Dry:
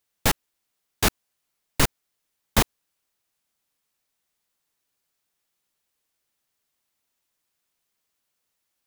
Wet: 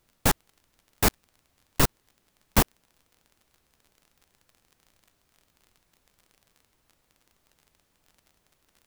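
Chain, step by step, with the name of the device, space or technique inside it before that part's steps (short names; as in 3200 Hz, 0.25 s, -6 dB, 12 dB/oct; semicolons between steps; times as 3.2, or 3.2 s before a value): record under a worn stylus (tracing distortion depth 0.34 ms; crackle 36/s -43 dBFS; pink noise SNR 38 dB)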